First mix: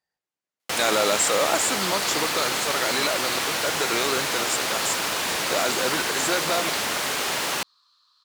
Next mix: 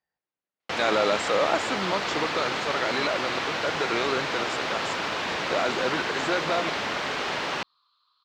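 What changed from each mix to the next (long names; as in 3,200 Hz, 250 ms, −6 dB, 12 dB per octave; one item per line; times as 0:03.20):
second sound: add phaser with its sweep stopped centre 1,900 Hz, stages 6
master: add high-frequency loss of the air 190 metres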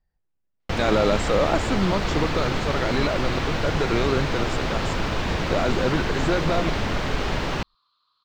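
master: remove meter weighting curve A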